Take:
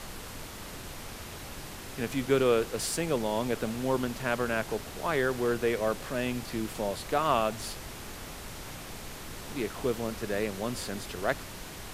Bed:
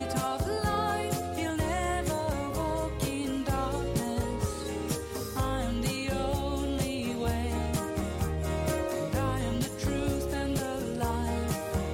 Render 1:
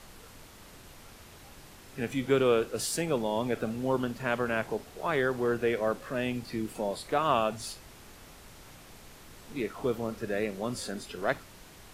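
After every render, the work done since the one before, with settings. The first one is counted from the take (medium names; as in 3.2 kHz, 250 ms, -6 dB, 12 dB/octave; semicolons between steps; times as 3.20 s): noise print and reduce 9 dB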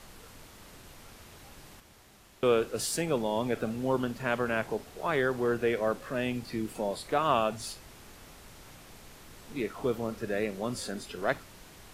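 1.80–2.43 s: room tone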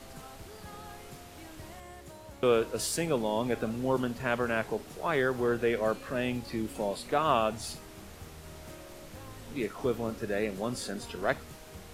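add bed -18.5 dB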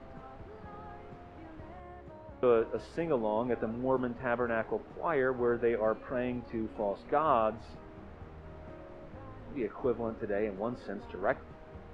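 low-pass 1.5 kHz 12 dB/octave; dynamic bell 140 Hz, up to -6 dB, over -49 dBFS, Q 1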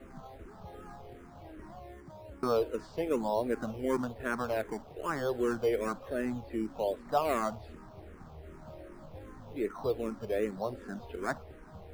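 in parallel at -9 dB: decimation with a swept rate 13×, swing 60% 1.1 Hz; on the sum: barber-pole phaser -2.6 Hz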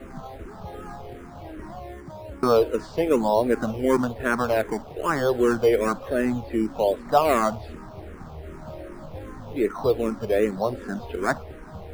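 trim +10 dB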